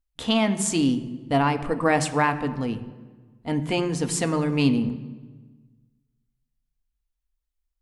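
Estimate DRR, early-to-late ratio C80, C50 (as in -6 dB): 8.0 dB, 14.5 dB, 13.0 dB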